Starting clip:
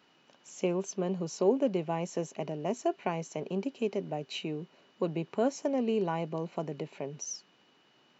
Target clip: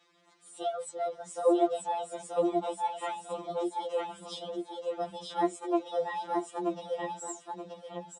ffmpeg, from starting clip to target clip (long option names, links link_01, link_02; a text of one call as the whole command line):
ffmpeg -i in.wav -af "aecho=1:1:930|1860|2790:0.708|0.17|0.0408,asetrate=57191,aresample=44100,atempo=0.771105,afftfilt=real='re*2.83*eq(mod(b,8),0)':imag='im*2.83*eq(mod(b,8),0)':win_size=2048:overlap=0.75" out.wav